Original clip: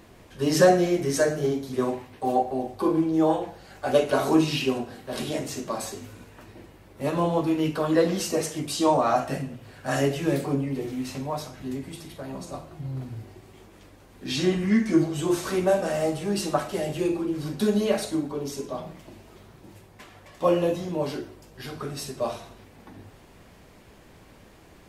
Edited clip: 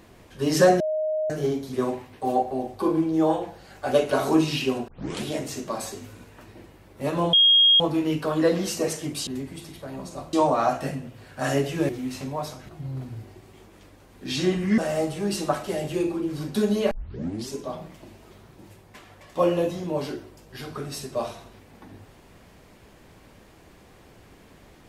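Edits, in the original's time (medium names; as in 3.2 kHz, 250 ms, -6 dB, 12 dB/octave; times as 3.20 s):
0.80–1.30 s: bleep 622 Hz -22.5 dBFS
4.88 s: tape start 0.36 s
7.33 s: add tone 3.26 kHz -13 dBFS 0.47 s
10.36–10.83 s: delete
11.63–12.69 s: move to 8.80 s
14.78–15.83 s: delete
17.96 s: tape start 0.61 s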